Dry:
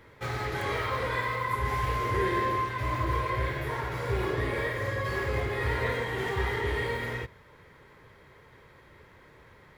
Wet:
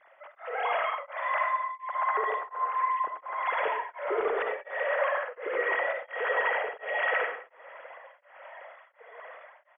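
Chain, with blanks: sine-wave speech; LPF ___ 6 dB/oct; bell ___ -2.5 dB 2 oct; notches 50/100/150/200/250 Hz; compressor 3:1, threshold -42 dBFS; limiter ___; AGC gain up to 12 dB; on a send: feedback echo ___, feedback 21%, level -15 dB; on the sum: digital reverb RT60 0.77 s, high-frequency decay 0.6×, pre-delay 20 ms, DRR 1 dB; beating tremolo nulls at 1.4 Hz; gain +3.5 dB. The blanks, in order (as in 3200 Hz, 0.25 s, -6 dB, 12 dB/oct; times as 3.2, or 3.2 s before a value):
1100 Hz, 240 Hz, -38 dBFS, 0.255 s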